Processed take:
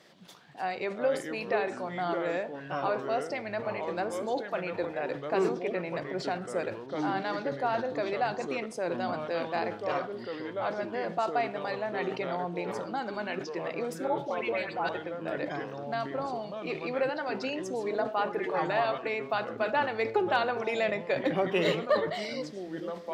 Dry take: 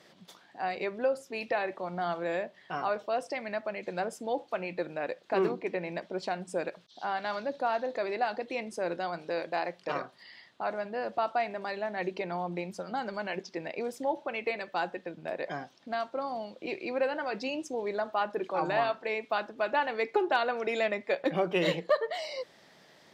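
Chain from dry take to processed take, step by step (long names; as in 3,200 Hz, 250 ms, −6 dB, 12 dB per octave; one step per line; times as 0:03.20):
0:14.07–0:14.89: all-pass dispersion highs, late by 113 ms, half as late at 1,400 Hz
convolution reverb RT60 0.85 s, pre-delay 47 ms, DRR 18 dB
delay with pitch and tempo change per echo 219 ms, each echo −4 semitones, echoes 2, each echo −6 dB
level that may fall only so fast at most 130 dB per second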